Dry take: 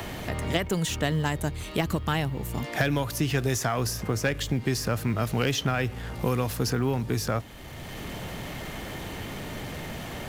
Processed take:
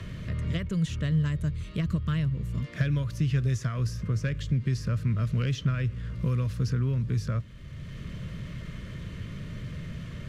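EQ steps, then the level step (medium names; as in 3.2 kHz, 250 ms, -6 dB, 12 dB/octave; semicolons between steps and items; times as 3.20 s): Butterworth band-stop 800 Hz, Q 2; distance through air 62 m; resonant low shelf 220 Hz +9.5 dB, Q 1.5; -8.5 dB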